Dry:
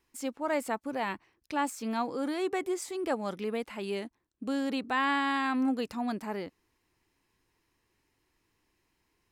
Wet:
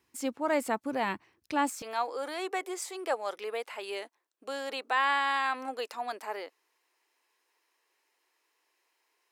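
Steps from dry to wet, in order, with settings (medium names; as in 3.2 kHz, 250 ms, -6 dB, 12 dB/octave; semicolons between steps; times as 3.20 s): high-pass 71 Hz 24 dB/octave, from 1.82 s 460 Hz; trim +2 dB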